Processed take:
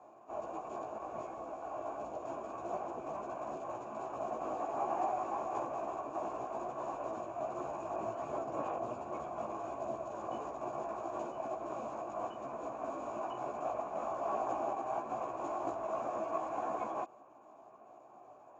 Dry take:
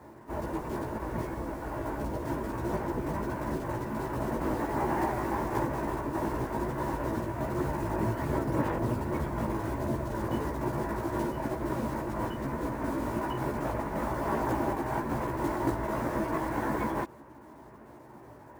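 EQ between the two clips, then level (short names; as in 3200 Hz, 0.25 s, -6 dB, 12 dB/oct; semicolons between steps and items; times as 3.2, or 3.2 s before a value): vowel filter a; ladder low-pass 7000 Hz, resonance 90%; low shelf 470 Hz +4 dB; +17.0 dB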